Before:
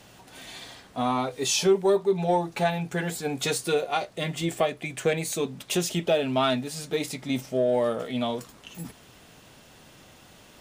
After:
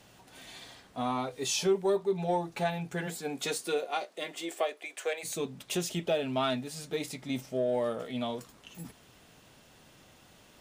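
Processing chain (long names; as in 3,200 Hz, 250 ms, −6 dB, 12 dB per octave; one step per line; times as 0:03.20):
0:03.06–0:05.23: high-pass filter 140 Hz → 510 Hz 24 dB per octave
level −6 dB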